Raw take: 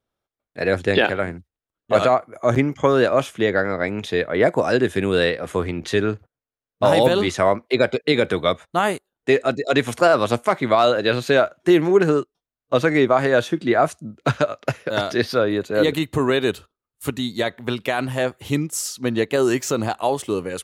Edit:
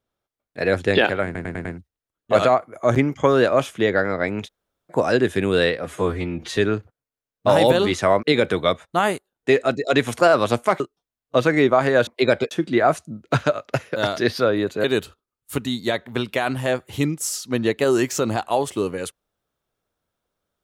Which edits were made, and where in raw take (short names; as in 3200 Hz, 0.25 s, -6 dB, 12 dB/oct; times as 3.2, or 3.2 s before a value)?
1.25 stutter 0.10 s, 5 plays
4.06–4.52 room tone, crossfade 0.06 s
5.45–5.93 stretch 1.5×
7.59–8.03 move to 13.45
10.6–12.18 cut
15.78–16.36 cut